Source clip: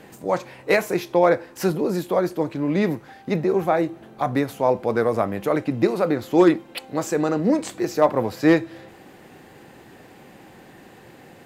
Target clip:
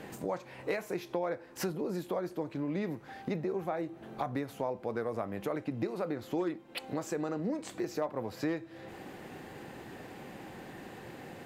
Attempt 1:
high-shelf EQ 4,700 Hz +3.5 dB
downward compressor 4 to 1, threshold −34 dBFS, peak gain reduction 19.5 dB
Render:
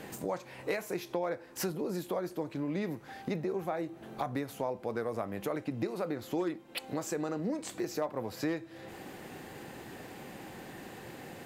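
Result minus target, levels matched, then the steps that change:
8,000 Hz band +4.5 dB
change: high-shelf EQ 4,700 Hz −3.5 dB

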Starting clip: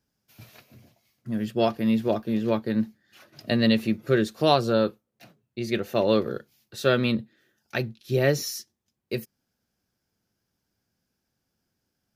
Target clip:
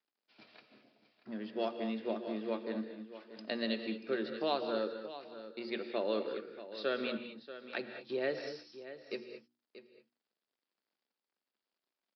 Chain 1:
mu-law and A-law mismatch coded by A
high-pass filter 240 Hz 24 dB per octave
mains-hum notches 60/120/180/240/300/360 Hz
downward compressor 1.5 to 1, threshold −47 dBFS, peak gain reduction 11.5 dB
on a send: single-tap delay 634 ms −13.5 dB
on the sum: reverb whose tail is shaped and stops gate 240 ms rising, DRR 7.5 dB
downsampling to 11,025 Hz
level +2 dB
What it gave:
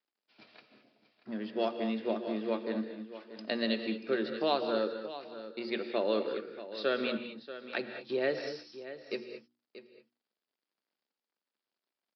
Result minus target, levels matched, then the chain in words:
downward compressor: peak gain reduction −4 dB
mu-law and A-law mismatch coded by A
high-pass filter 240 Hz 24 dB per octave
mains-hum notches 60/120/180/240/300/360 Hz
downward compressor 1.5 to 1, threshold −58.5 dBFS, peak gain reduction 15.5 dB
on a send: single-tap delay 634 ms −13.5 dB
on the sum: reverb whose tail is shaped and stops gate 240 ms rising, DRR 7.5 dB
downsampling to 11,025 Hz
level +2 dB

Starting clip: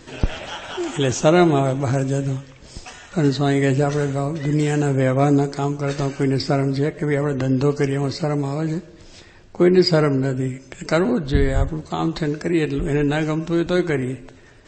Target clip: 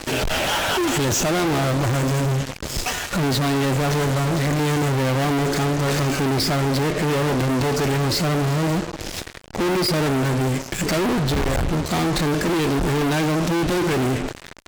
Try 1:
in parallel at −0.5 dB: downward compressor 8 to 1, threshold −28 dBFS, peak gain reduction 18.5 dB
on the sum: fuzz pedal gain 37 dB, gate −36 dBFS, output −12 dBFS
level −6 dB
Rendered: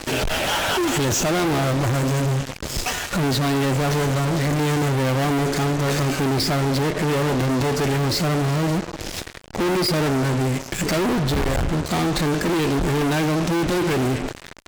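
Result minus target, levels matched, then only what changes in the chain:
downward compressor: peak gain reduction +9 dB
change: downward compressor 8 to 1, threshold −18 dBFS, peak gain reduction 9.5 dB

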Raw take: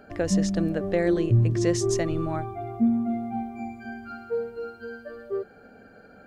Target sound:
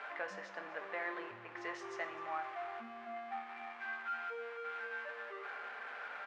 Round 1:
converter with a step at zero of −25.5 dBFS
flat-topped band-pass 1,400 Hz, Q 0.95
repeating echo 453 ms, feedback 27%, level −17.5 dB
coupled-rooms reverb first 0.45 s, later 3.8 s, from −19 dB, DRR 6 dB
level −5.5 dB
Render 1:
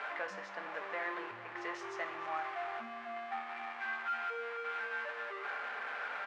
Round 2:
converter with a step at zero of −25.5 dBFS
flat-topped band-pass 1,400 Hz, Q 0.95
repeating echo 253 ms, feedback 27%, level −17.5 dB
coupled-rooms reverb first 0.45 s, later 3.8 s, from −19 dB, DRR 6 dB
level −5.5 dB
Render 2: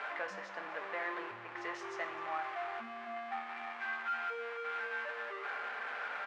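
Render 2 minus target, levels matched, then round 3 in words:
converter with a step at zero: distortion +5 dB
converter with a step at zero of −31.5 dBFS
flat-topped band-pass 1,400 Hz, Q 0.95
repeating echo 253 ms, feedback 27%, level −17.5 dB
coupled-rooms reverb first 0.45 s, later 3.8 s, from −19 dB, DRR 6 dB
level −5.5 dB

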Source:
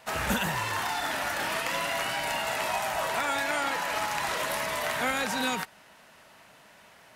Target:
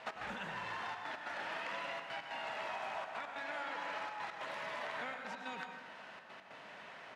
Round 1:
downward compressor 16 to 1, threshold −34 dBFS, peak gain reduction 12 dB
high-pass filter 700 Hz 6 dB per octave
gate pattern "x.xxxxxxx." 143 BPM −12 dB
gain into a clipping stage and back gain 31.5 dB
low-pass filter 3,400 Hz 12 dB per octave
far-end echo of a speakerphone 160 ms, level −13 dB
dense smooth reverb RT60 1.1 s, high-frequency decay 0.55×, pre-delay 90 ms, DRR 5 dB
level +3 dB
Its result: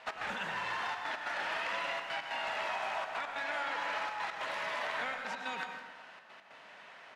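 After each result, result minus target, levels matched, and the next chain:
downward compressor: peak gain reduction −7 dB; 250 Hz band −5.5 dB
downward compressor 16 to 1, threshold −41.5 dBFS, peak gain reduction 19 dB
high-pass filter 700 Hz 6 dB per octave
gate pattern "x.xxxxxxx." 143 BPM −12 dB
gain into a clipping stage and back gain 31.5 dB
low-pass filter 3,400 Hz 12 dB per octave
far-end echo of a speakerphone 160 ms, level −13 dB
dense smooth reverb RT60 1.1 s, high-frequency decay 0.55×, pre-delay 90 ms, DRR 5 dB
level +3 dB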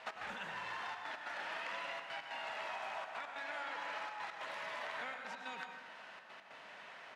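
250 Hz band −5.0 dB
downward compressor 16 to 1, threshold −41.5 dBFS, peak gain reduction 19 dB
high-pass filter 280 Hz 6 dB per octave
gate pattern "x.xxxxxxx." 143 BPM −12 dB
gain into a clipping stage and back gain 31.5 dB
low-pass filter 3,400 Hz 12 dB per octave
far-end echo of a speakerphone 160 ms, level −13 dB
dense smooth reverb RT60 1.1 s, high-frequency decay 0.55×, pre-delay 90 ms, DRR 5 dB
level +3 dB

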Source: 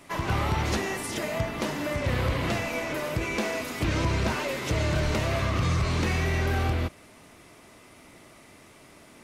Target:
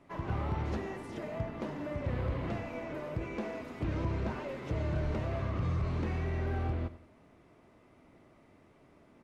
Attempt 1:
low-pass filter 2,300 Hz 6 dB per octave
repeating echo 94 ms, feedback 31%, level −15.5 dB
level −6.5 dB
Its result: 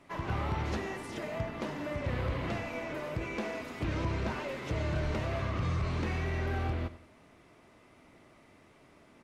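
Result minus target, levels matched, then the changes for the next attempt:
2,000 Hz band +5.0 dB
change: low-pass filter 810 Hz 6 dB per octave

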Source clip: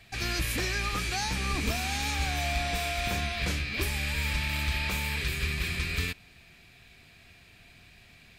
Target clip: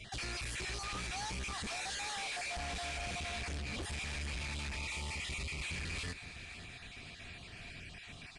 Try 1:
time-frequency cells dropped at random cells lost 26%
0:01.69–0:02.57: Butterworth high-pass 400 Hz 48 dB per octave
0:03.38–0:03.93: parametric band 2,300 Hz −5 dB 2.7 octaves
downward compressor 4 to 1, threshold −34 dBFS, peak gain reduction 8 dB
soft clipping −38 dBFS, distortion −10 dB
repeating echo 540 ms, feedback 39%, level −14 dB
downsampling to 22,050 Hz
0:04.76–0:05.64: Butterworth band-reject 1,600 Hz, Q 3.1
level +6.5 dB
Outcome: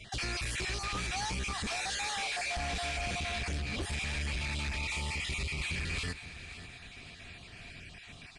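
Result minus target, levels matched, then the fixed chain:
soft clipping: distortion −4 dB
time-frequency cells dropped at random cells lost 26%
0:01.69–0:02.57: Butterworth high-pass 400 Hz 48 dB per octave
0:03.38–0:03.93: parametric band 2,300 Hz −5 dB 2.7 octaves
downward compressor 4 to 1, threshold −34 dBFS, peak gain reduction 8 dB
soft clipping −45 dBFS, distortion −6 dB
repeating echo 540 ms, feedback 39%, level −14 dB
downsampling to 22,050 Hz
0:04.76–0:05.64: Butterworth band-reject 1,600 Hz, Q 3.1
level +6.5 dB

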